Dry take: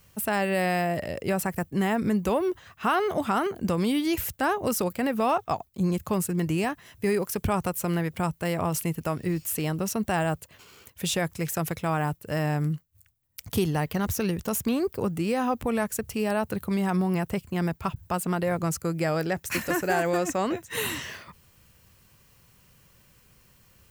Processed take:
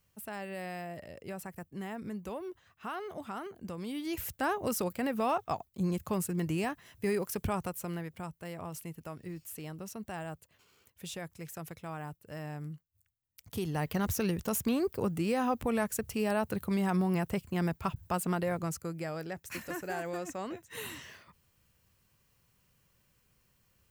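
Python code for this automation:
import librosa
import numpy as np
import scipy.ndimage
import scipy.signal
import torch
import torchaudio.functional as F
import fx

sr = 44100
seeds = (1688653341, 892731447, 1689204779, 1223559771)

y = fx.gain(x, sr, db=fx.line((3.81, -15.0), (4.34, -6.0), (7.4, -6.0), (8.3, -14.5), (13.42, -14.5), (13.89, -4.0), (18.3, -4.0), (19.12, -12.0)))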